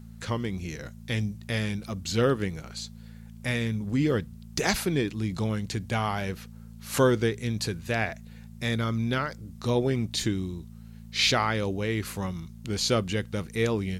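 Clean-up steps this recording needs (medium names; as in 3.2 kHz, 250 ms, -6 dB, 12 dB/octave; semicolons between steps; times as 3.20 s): de-hum 55.9 Hz, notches 4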